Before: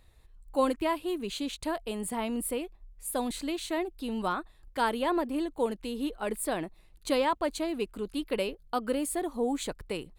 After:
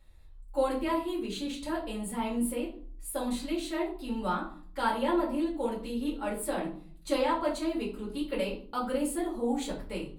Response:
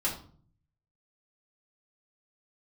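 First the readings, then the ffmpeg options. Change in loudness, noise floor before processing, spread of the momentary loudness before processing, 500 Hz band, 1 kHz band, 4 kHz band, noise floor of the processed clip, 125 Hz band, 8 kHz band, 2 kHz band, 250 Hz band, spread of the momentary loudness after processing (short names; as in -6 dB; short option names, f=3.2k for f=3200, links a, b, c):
-0.5 dB, -58 dBFS, 8 LU, -1.0 dB, -1.0 dB, -2.5 dB, -49 dBFS, +2.0 dB, -3.0 dB, -1.5 dB, +1.0 dB, 8 LU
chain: -filter_complex "[1:a]atrim=start_sample=2205[a];[0:a][a]afir=irnorm=-1:irlink=0,volume=-7.5dB"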